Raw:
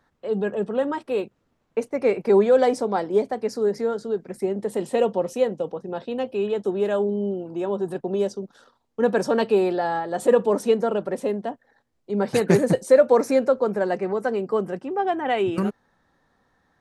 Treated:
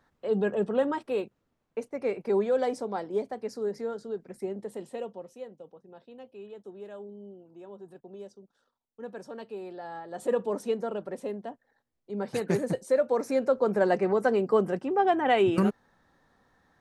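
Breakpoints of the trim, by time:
0.76 s -2 dB
1.79 s -9 dB
4.53 s -9 dB
5.33 s -20 dB
9.57 s -20 dB
10.31 s -9.5 dB
13.18 s -9.5 dB
13.85 s 0 dB

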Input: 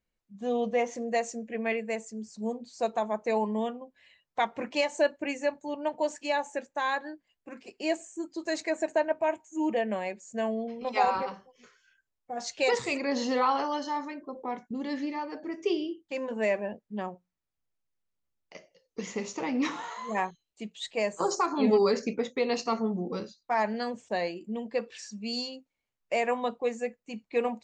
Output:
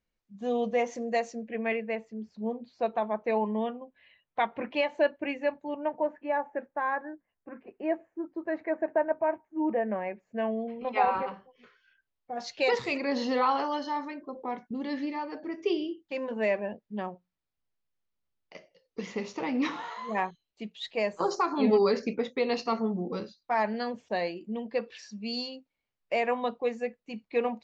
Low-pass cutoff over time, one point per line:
low-pass 24 dB/octave
1.06 s 6.6 kHz
1.72 s 3.4 kHz
5.60 s 3.4 kHz
6.06 s 1.8 kHz
9.82 s 1.8 kHz
10.53 s 3.1 kHz
11.20 s 3.1 kHz
12.33 s 5.1 kHz

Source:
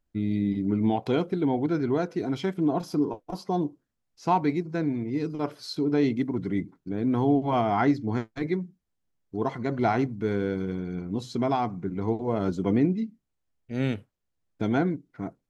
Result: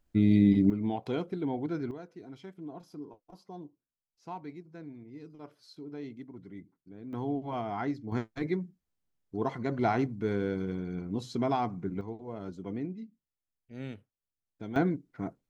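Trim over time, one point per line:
+4.5 dB
from 0.70 s -7.5 dB
from 1.91 s -18 dB
from 7.13 s -10.5 dB
from 8.12 s -3.5 dB
from 12.01 s -13.5 dB
from 14.76 s -2 dB

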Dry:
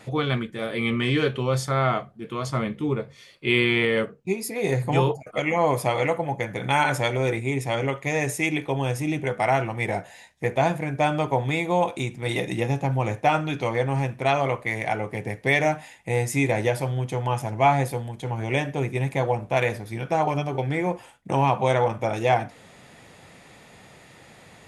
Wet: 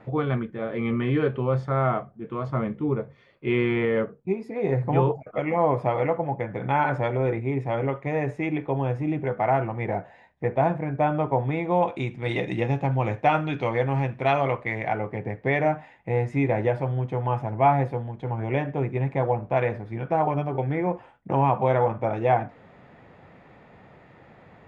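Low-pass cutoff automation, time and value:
11.52 s 1.4 kHz
12.12 s 2.9 kHz
14.39 s 2.9 kHz
15.23 s 1.6 kHz

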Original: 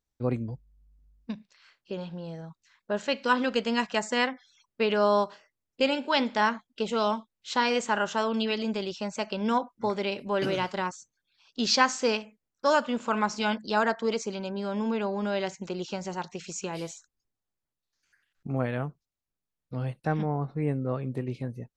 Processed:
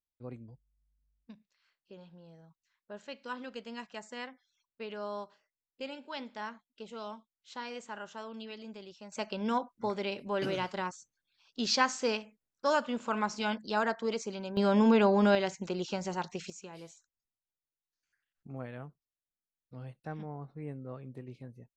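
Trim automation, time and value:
-16 dB
from 9.12 s -5 dB
from 14.57 s +5.5 dB
from 15.35 s -1 dB
from 16.50 s -13 dB

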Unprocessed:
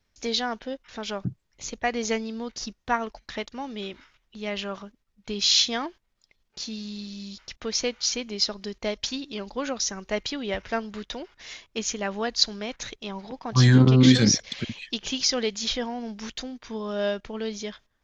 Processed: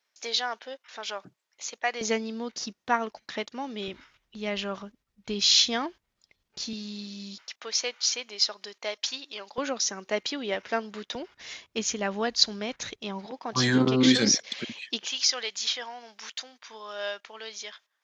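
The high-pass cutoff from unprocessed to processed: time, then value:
650 Hz
from 2.01 s 180 Hz
from 3.88 s 46 Hz
from 6.73 s 190 Hz
from 7.41 s 680 Hz
from 9.58 s 250 Hz
from 11.15 s 74 Hz
from 13.26 s 280 Hz
from 15.05 s 910 Hz

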